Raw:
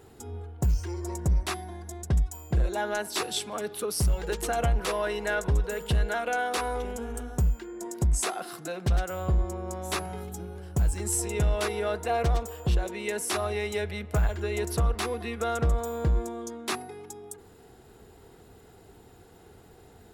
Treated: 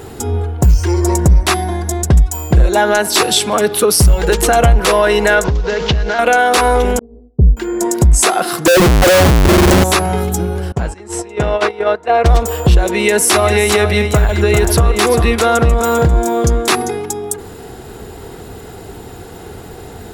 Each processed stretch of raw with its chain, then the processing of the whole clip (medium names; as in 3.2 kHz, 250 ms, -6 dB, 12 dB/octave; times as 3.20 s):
5.44–6.19 s: CVSD coder 32 kbps + compression 10:1, threshold -34 dBFS + transient shaper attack +7 dB, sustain +3 dB
6.99–7.57 s: inverse Chebyshev low-pass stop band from 2.9 kHz, stop band 80 dB + expander -26 dBFS + three bands expanded up and down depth 40%
8.66–9.84 s: resonances exaggerated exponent 3 + comb 5.5 ms, depth 39% + Schmitt trigger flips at -45.5 dBFS
10.72–12.26 s: gate -29 dBFS, range -15 dB + high-pass 460 Hz 6 dB/octave + tape spacing loss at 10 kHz 22 dB
12.96–16.99 s: high-pass 45 Hz + delay 396 ms -8 dB
whole clip: compression 2.5:1, threshold -29 dBFS; loudness maximiser +22 dB; trim -1 dB